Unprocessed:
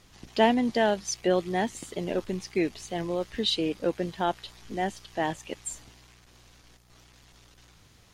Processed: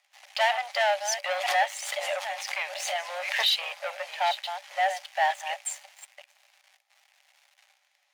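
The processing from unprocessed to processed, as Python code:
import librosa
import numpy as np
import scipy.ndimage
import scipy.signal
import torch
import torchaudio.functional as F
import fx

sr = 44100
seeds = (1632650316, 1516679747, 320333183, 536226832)

y = fx.reverse_delay(x, sr, ms=488, wet_db=-13)
y = fx.leveller(y, sr, passes=3)
y = scipy.signal.sosfilt(scipy.signal.cheby1(6, 9, 560.0, 'highpass', fs=sr, output='sos'), y)
y = fx.pre_swell(y, sr, db_per_s=51.0, at=(1.29, 3.7))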